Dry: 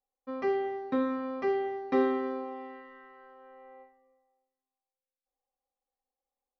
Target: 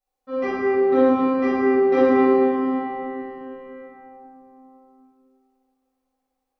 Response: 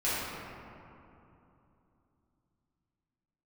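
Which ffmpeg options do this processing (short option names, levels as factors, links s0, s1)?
-filter_complex "[0:a]bandreject=f=116.1:t=h:w=4,bandreject=f=232.2:t=h:w=4,bandreject=f=348.3:t=h:w=4,bandreject=f=464.4:t=h:w=4,bandreject=f=580.5:t=h:w=4,bandreject=f=696.6:t=h:w=4,bandreject=f=812.7:t=h:w=4,bandreject=f=928.8:t=h:w=4,bandreject=f=1044.9:t=h:w=4,bandreject=f=1161:t=h:w=4,bandreject=f=1277.1:t=h:w=4,bandreject=f=1393.2:t=h:w=4,bandreject=f=1509.3:t=h:w=4,bandreject=f=1625.4:t=h:w=4,bandreject=f=1741.5:t=h:w=4,bandreject=f=1857.6:t=h:w=4,bandreject=f=1973.7:t=h:w=4,bandreject=f=2089.8:t=h:w=4,bandreject=f=2205.9:t=h:w=4,bandreject=f=2322:t=h:w=4,bandreject=f=2438.1:t=h:w=4,bandreject=f=2554.2:t=h:w=4,bandreject=f=2670.3:t=h:w=4,bandreject=f=2786.4:t=h:w=4,bandreject=f=2902.5:t=h:w=4,bandreject=f=3018.6:t=h:w=4,bandreject=f=3134.7:t=h:w=4,bandreject=f=3250.8:t=h:w=4,bandreject=f=3366.9:t=h:w=4[s0];[1:a]atrim=start_sample=2205[s1];[s0][s1]afir=irnorm=-1:irlink=0,volume=1.26"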